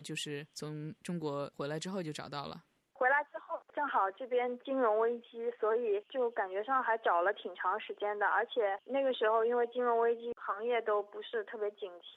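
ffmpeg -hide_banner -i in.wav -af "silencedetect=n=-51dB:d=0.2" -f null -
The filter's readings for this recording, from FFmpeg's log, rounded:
silence_start: 2.60
silence_end: 2.96 | silence_duration: 0.36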